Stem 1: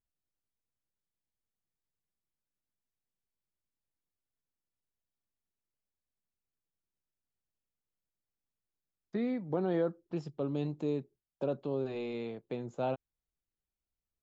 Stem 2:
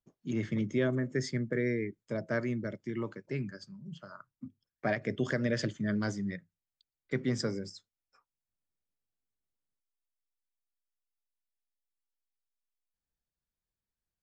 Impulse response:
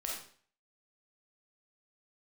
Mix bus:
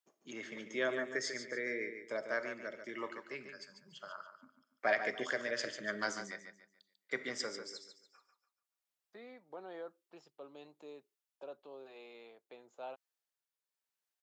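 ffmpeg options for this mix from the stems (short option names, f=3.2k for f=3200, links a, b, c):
-filter_complex "[0:a]volume=-8.5dB[a];[1:a]tremolo=f=1:d=0.42,volume=1.5dB,asplit=3[b][c][d];[c]volume=-11.5dB[e];[d]volume=-7dB[f];[2:a]atrim=start_sample=2205[g];[e][g]afir=irnorm=-1:irlink=0[h];[f]aecho=0:1:144|288|432|576|720:1|0.32|0.102|0.0328|0.0105[i];[a][b][h][i]amix=inputs=4:normalize=0,highpass=640"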